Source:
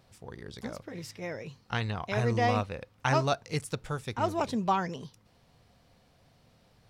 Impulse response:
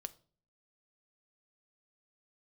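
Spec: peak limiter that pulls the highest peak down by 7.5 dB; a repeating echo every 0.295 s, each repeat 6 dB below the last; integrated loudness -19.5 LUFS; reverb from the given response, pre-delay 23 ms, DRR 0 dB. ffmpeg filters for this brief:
-filter_complex "[0:a]alimiter=limit=-20dB:level=0:latency=1,aecho=1:1:295|590|885|1180|1475|1770:0.501|0.251|0.125|0.0626|0.0313|0.0157,asplit=2[a][b];[1:a]atrim=start_sample=2205,adelay=23[c];[b][c]afir=irnorm=-1:irlink=0,volume=3.5dB[d];[a][d]amix=inputs=2:normalize=0,volume=10dB"

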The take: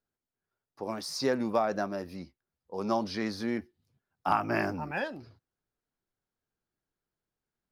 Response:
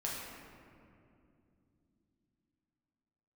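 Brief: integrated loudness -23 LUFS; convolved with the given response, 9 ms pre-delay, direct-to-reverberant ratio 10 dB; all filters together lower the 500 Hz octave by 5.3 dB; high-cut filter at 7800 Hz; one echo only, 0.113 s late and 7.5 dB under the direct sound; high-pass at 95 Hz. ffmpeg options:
-filter_complex "[0:a]highpass=95,lowpass=7.8k,equalizer=f=500:t=o:g=-7,aecho=1:1:113:0.422,asplit=2[a][b];[1:a]atrim=start_sample=2205,adelay=9[c];[b][c]afir=irnorm=-1:irlink=0,volume=-13dB[d];[a][d]amix=inputs=2:normalize=0,volume=10.5dB"

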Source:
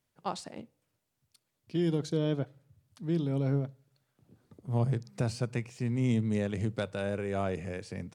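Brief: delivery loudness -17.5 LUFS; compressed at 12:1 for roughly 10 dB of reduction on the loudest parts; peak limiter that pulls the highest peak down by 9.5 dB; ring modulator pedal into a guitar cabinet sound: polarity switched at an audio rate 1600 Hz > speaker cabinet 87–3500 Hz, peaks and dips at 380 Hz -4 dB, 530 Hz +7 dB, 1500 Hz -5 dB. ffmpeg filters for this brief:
-af "acompressor=threshold=-34dB:ratio=12,alimiter=level_in=8.5dB:limit=-24dB:level=0:latency=1,volume=-8.5dB,aeval=exprs='val(0)*sgn(sin(2*PI*1600*n/s))':c=same,highpass=87,equalizer=f=380:t=q:w=4:g=-4,equalizer=f=530:t=q:w=4:g=7,equalizer=f=1.5k:t=q:w=4:g=-5,lowpass=f=3.5k:w=0.5412,lowpass=f=3.5k:w=1.3066,volume=26dB"

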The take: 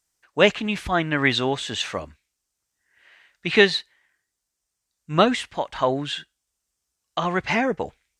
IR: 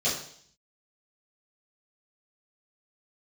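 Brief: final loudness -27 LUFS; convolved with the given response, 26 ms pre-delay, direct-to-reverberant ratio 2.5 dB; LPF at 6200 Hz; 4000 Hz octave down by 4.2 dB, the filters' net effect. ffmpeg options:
-filter_complex "[0:a]lowpass=6.2k,equalizer=f=4k:t=o:g=-5,asplit=2[a][b];[1:a]atrim=start_sample=2205,adelay=26[c];[b][c]afir=irnorm=-1:irlink=0,volume=-13dB[d];[a][d]amix=inputs=2:normalize=0,volume=-6.5dB"

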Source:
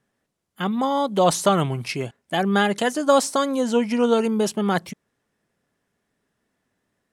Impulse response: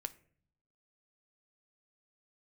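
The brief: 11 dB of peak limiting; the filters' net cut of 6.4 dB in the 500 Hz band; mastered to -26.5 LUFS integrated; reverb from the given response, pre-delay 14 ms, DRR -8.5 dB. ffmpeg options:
-filter_complex "[0:a]equalizer=f=500:t=o:g=-7.5,alimiter=limit=-18dB:level=0:latency=1,asplit=2[a][b];[1:a]atrim=start_sample=2205,adelay=14[c];[b][c]afir=irnorm=-1:irlink=0,volume=11dB[d];[a][d]amix=inputs=2:normalize=0,volume=-8dB"

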